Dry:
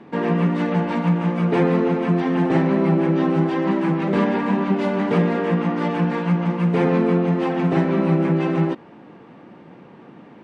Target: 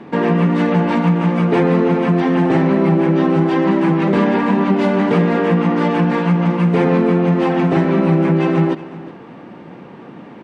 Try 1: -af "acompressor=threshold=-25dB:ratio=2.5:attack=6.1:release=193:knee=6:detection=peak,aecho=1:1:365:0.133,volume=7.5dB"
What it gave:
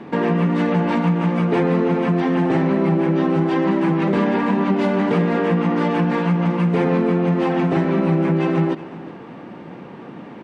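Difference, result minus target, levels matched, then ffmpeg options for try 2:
compressor: peak gain reduction +4 dB
-af "acompressor=threshold=-18.5dB:ratio=2.5:attack=6.1:release=193:knee=6:detection=peak,aecho=1:1:365:0.133,volume=7.5dB"

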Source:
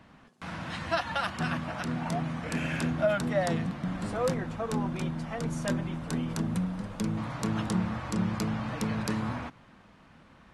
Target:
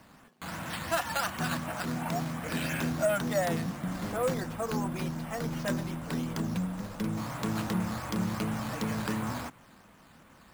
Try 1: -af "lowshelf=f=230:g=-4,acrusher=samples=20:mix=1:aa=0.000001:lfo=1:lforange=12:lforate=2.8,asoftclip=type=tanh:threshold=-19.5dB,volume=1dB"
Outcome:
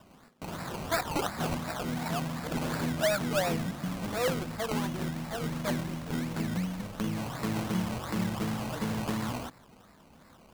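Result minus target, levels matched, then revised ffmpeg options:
decimation with a swept rate: distortion +9 dB
-af "lowshelf=f=230:g=-4,acrusher=samples=6:mix=1:aa=0.000001:lfo=1:lforange=3.6:lforate=2.8,asoftclip=type=tanh:threshold=-19.5dB,volume=1dB"

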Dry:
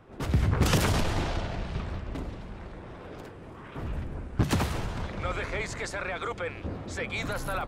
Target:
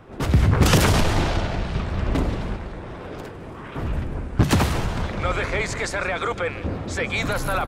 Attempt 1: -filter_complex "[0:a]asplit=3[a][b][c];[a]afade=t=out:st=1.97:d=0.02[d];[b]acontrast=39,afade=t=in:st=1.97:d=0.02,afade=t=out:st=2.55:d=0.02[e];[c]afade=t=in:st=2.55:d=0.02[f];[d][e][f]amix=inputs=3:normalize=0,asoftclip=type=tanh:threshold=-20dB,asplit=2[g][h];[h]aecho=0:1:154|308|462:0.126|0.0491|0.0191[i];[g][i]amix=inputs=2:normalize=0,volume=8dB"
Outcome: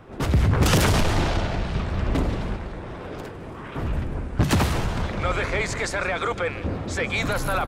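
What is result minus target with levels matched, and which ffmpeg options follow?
soft clip: distortion +13 dB
-filter_complex "[0:a]asplit=3[a][b][c];[a]afade=t=out:st=1.97:d=0.02[d];[b]acontrast=39,afade=t=in:st=1.97:d=0.02,afade=t=out:st=2.55:d=0.02[e];[c]afade=t=in:st=2.55:d=0.02[f];[d][e][f]amix=inputs=3:normalize=0,asoftclip=type=tanh:threshold=-11dB,asplit=2[g][h];[h]aecho=0:1:154|308|462:0.126|0.0491|0.0191[i];[g][i]amix=inputs=2:normalize=0,volume=8dB"

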